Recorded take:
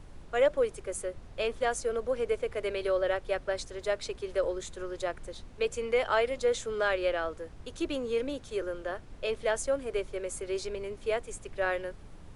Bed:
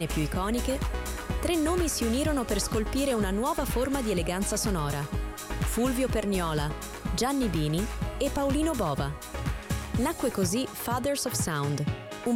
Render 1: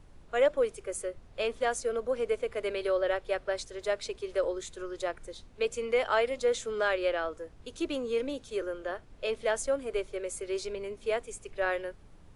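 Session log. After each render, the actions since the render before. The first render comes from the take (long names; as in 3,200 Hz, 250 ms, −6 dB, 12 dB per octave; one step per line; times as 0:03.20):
noise reduction from a noise print 6 dB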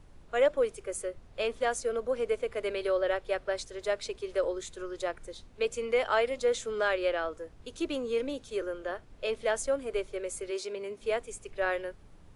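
0:10.50–0:11.00: high-pass filter 350 Hz → 120 Hz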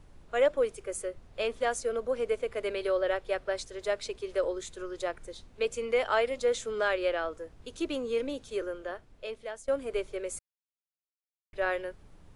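0:08.61–0:09.68: fade out, to −16 dB
0:10.39–0:11.53: silence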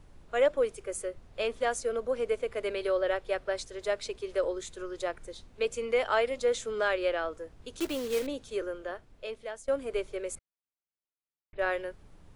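0:07.80–0:08.27: one scale factor per block 3 bits
0:10.35–0:11.59: high-frequency loss of the air 390 metres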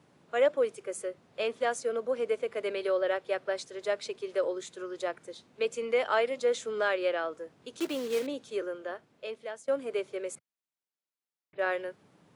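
high-pass filter 140 Hz 24 dB per octave
high-shelf EQ 8,100 Hz −5.5 dB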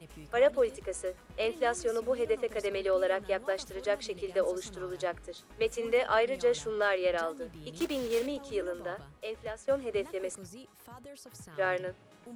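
mix in bed −21 dB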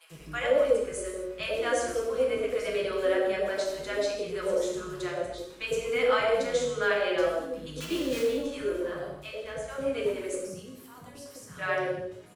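multiband delay without the direct sound highs, lows 100 ms, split 830 Hz
reverb whose tail is shaped and stops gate 280 ms falling, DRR −2 dB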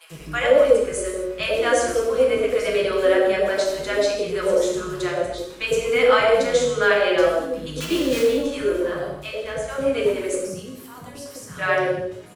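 level +8.5 dB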